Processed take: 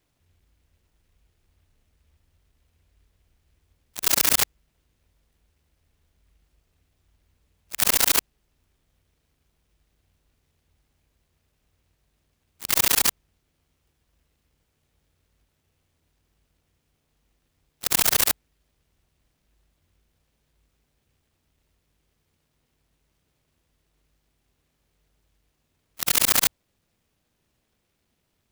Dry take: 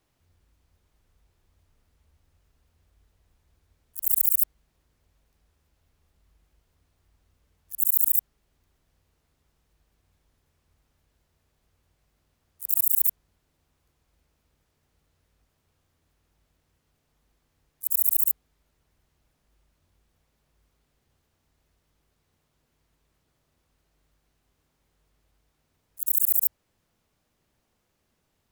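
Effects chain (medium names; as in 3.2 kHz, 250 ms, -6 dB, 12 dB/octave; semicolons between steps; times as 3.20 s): sine folder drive 7 dB, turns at -1 dBFS; Chebyshev shaper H 3 -28 dB, 7 -24 dB, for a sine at 1 dBFS; delay time shaken by noise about 2.2 kHz, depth 0.21 ms; trim -3 dB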